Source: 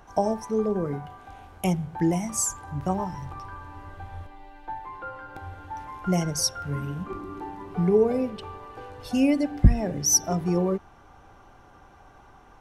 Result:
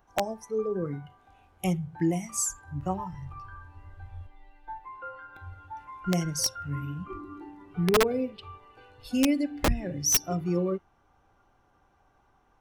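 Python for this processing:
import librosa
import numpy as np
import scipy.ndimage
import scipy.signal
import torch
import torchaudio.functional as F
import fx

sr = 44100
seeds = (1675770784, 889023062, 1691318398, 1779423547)

y = fx.noise_reduce_blind(x, sr, reduce_db=11)
y = (np.mod(10.0 ** (13.0 / 20.0) * y + 1.0, 2.0) - 1.0) / 10.0 ** (13.0 / 20.0)
y = y * librosa.db_to_amplitude(-2.5)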